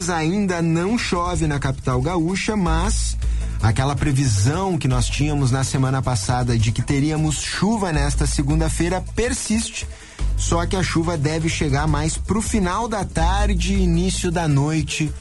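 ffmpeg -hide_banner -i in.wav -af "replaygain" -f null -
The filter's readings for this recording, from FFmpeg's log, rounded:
track_gain = +3.9 dB
track_peak = 0.320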